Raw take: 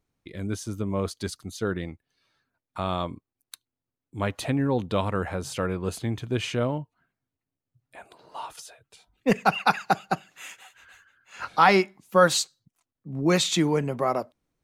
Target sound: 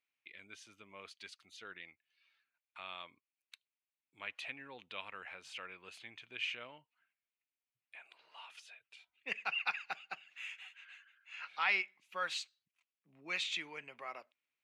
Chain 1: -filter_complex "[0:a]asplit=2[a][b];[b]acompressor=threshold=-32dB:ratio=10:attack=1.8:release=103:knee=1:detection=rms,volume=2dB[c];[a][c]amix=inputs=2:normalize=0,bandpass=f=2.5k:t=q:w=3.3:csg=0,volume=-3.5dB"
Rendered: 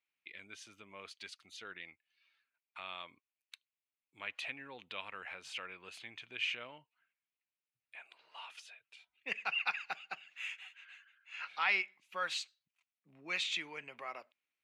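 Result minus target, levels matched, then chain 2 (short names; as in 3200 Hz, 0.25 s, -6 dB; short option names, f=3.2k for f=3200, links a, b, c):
compressor: peak gain reduction -10.5 dB
-filter_complex "[0:a]asplit=2[a][b];[b]acompressor=threshold=-43.5dB:ratio=10:attack=1.8:release=103:knee=1:detection=rms,volume=2dB[c];[a][c]amix=inputs=2:normalize=0,bandpass=f=2.5k:t=q:w=3.3:csg=0,volume=-3.5dB"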